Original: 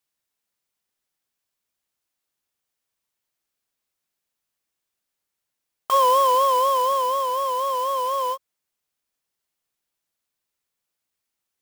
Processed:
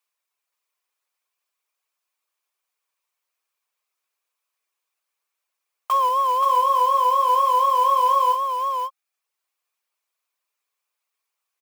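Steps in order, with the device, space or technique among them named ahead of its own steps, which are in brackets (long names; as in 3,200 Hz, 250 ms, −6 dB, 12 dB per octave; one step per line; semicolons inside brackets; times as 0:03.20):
laptop speaker (high-pass filter 410 Hz 24 dB per octave; parametric band 1,100 Hz +8.5 dB 0.46 octaves; parametric band 2,400 Hz +7 dB 0.27 octaves; brickwall limiter −13 dBFS, peak gain reduction 10 dB)
0:06.09–0:07.29: Chebyshev high-pass filter 270 Hz, order 2
reverb reduction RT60 0.66 s
single-tap delay 527 ms −4.5 dB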